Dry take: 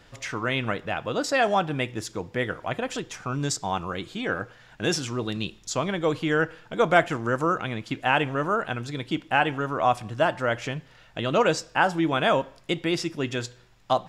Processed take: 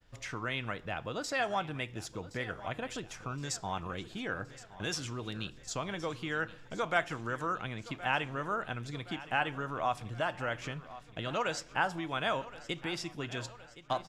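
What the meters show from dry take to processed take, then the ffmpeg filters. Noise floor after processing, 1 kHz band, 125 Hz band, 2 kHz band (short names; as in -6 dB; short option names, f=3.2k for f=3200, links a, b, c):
-54 dBFS, -9.5 dB, -9.0 dB, -8.0 dB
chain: -filter_complex "[0:a]agate=range=-33dB:threshold=-48dB:ratio=3:detection=peak,lowshelf=f=100:g=10.5,acrossover=split=750|1300[a][b][c];[a]acompressor=threshold=-29dB:ratio=6[d];[d][b][c]amix=inputs=3:normalize=0,aecho=1:1:1069|2138|3207|4276|5345:0.15|0.0853|0.0486|0.0277|0.0158,volume=-8dB"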